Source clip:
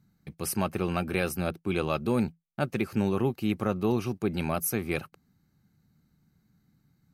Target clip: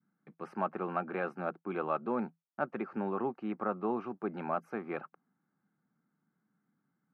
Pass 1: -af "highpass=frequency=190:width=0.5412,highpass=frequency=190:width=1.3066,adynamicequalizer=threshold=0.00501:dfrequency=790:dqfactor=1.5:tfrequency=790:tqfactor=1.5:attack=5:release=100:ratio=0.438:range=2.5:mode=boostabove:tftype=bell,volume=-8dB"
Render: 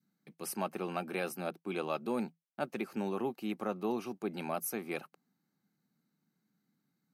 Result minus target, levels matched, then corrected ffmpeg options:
1,000 Hz band −3.0 dB
-af "highpass=frequency=190:width=0.5412,highpass=frequency=190:width=1.3066,adynamicequalizer=threshold=0.00501:dfrequency=790:dqfactor=1.5:tfrequency=790:tqfactor=1.5:attack=5:release=100:ratio=0.438:range=2.5:mode=boostabove:tftype=bell,lowpass=frequency=1400:width_type=q:width=2,volume=-8dB"

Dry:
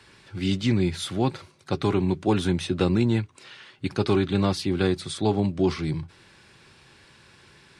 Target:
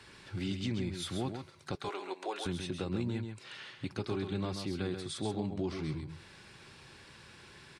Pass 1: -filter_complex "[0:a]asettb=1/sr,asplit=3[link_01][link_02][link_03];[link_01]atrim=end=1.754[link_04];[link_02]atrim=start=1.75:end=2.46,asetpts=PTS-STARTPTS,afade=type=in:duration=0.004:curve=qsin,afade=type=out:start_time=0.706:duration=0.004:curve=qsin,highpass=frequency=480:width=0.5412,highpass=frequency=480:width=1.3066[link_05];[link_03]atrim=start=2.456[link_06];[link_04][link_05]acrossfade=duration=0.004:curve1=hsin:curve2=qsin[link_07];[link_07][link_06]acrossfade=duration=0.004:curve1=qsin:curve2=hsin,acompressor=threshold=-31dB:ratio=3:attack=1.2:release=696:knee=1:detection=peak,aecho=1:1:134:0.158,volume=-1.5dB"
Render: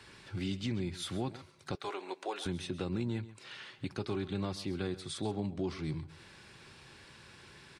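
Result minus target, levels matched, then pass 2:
echo-to-direct −9 dB
-filter_complex "[0:a]asettb=1/sr,asplit=3[link_01][link_02][link_03];[link_01]atrim=end=1.754[link_04];[link_02]atrim=start=1.75:end=2.46,asetpts=PTS-STARTPTS,afade=type=in:duration=0.004:curve=qsin,afade=type=out:start_time=0.706:duration=0.004:curve=qsin,highpass=frequency=480:width=0.5412,highpass=frequency=480:width=1.3066[link_05];[link_03]atrim=start=2.456[link_06];[link_04][link_05]acrossfade=duration=0.004:curve1=hsin:curve2=qsin[link_07];[link_07][link_06]acrossfade=duration=0.004:curve1=qsin:curve2=hsin,acompressor=threshold=-31dB:ratio=3:attack=1.2:release=696:knee=1:detection=peak,aecho=1:1:134:0.447,volume=-1.5dB"

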